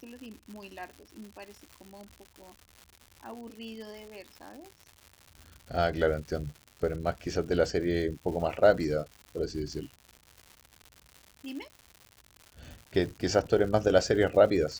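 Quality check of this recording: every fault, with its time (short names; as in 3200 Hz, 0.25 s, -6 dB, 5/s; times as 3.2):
crackle 210/s -39 dBFS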